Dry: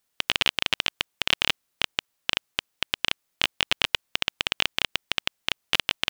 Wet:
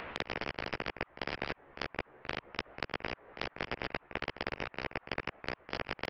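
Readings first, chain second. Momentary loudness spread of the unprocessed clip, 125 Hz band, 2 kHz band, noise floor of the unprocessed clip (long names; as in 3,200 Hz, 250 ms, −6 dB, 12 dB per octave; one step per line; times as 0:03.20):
5 LU, −1.5 dB, −11.0 dB, −76 dBFS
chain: samples in bit-reversed order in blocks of 32 samples
single-sideband voice off tune −370 Hz 270–2,400 Hz
multi-voice chorus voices 4, 0.41 Hz, delay 15 ms, depth 1.6 ms
parametric band 480 Hz +13 dB 1.5 octaves
echo ahead of the sound 43 ms −20.5 dB
upward compression, threshold −34 dBFS
every bin compressed towards the loudest bin 4 to 1
level +2.5 dB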